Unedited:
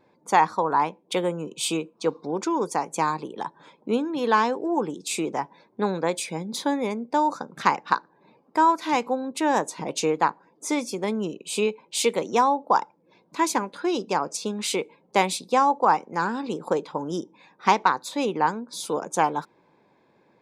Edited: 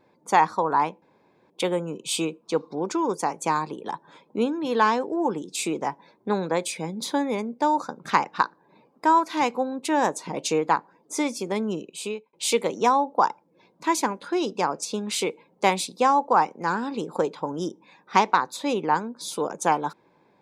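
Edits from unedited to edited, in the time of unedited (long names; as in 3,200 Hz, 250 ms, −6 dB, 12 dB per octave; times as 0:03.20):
0:01.02: splice in room tone 0.48 s
0:11.32–0:11.85: fade out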